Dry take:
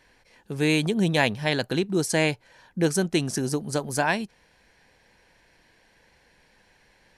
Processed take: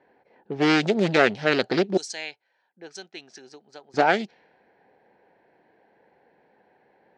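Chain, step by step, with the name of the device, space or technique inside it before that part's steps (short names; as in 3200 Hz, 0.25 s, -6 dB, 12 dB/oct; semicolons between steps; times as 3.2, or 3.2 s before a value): 1.97–3.94 pre-emphasis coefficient 0.97; low-pass opened by the level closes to 1100 Hz, open at -20.5 dBFS; full-range speaker at full volume (Doppler distortion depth 0.66 ms; speaker cabinet 220–6500 Hz, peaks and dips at 400 Hz +5 dB, 770 Hz +6 dB, 1100 Hz -7 dB, 4100 Hz +3 dB); gain +2.5 dB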